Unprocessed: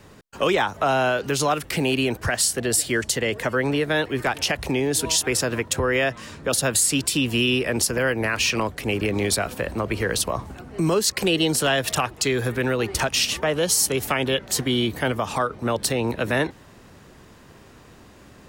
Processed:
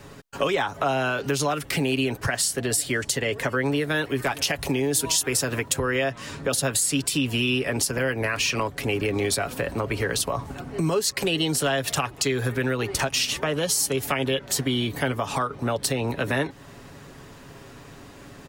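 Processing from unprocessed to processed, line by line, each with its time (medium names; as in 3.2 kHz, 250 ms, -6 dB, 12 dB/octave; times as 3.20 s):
3.66–5.91 s: treble shelf 8.1 kHz +7.5 dB
whole clip: comb 7.2 ms, depth 44%; compression 2:1, threshold -29 dBFS; trim +3 dB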